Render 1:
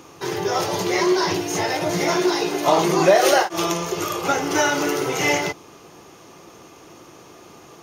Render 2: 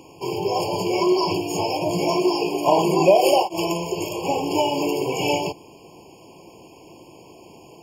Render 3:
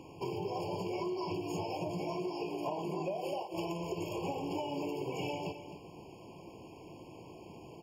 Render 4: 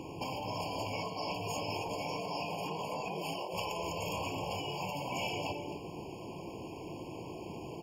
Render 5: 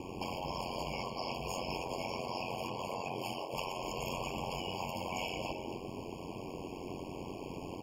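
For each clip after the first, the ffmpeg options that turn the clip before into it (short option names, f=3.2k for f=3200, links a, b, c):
-af "afftfilt=real='re*eq(mod(floor(b*sr/1024/1100),2),0)':imag='im*eq(mod(floor(b*sr/1024/1100),2),0)':win_size=1024:overlap=0.75"
-filter_complex "[0:a]bass=f=250:g=5,treble=f=4k:g=-7,acompressor=threshold=-28dB:ratio=10,asplit=2[a][b];[b]aecho=0:1:261:0.266[c];[a][c]amix=inputs=2:normalize=0,volume=-6dB"
-af "afftfilt=real='re*lt(hypot(re,im),0.0501)':imag='im*lt(hypot(re,im),0.0501)':win_size=1024:overlap=0.75,volume=7dB"
-filter_complex "[0:a]asplit=2[a][b];[b]alimiter=level_in=7dB:limit=-24dB:level=0:latency=1:release=453,volume=-7dB,volume=1dB[c];[a][c]amix=inputs=2:normalize=0,acrusher=bits=11:mix=0:aa=0.000001,aeval=exprs='val(0)*sin(2*PI*45*n/s)':c=same,volume=-3dB"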